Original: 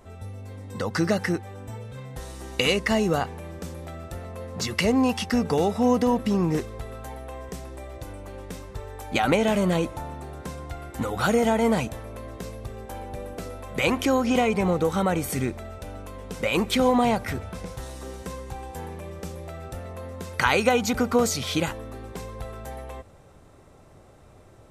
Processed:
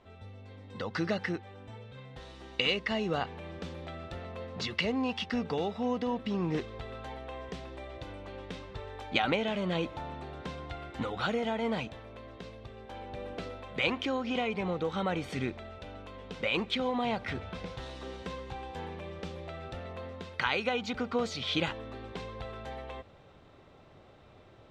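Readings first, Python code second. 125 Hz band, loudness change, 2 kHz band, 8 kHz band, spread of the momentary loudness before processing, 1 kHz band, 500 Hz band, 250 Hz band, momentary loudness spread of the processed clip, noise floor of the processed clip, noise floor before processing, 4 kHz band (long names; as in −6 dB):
−9.0 dB, −10.0 dB, −5.5 dB, −18.5 dB, 17 LU, −8.5 dB, −9.0 dB, −9.5 dB, 16 LU, −56 dBFS, −51 dBFS, −3.5 dB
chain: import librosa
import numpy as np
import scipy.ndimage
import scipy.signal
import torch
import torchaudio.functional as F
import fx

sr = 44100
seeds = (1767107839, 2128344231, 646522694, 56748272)

y = fx.low_shelf(x, sr, hz=76.0, db=-7.5)
y = fx.rider(y, sr, range_db=5, speed_s=0.5)
y = fx.lowpass_res(y, sr, hz=3500.0, q=2.0)
y = F.gain(torch.from_numpy(y), -8.5).numpy()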